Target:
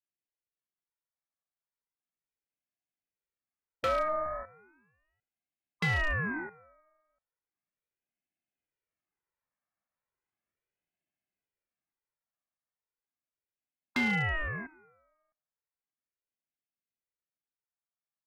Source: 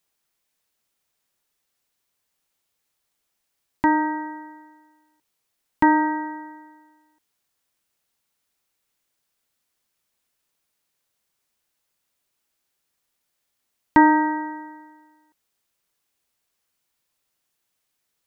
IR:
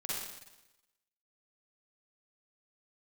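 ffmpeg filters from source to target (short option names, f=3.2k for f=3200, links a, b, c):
-af "highpass=f=470:p=1,afwtdn=0.0251,lowpass=f=1.7k:w=0.5412,lowpass=f=1.7k:w=1.3066,aecho=1:1:2.1:0.8,dynaudnorm=f=320:g=17:m=12dB,alimiter=limit=-7.5dB:level=0:latency=1:release=342,acompressor=threshold=-29dB:ratio=2,aeval=exprs='0.0944*(abs(mod(val(0)/0.0944+3,4)-2)-1)':c=same,aecho=1:1:85|170|255:0.0708|0.0297|0.0125,aeval=exprs='val(0)*sin(2*PI*740*n/s+740*0.6/0.36*sin(2*PI*0.36*n/s))':c=same"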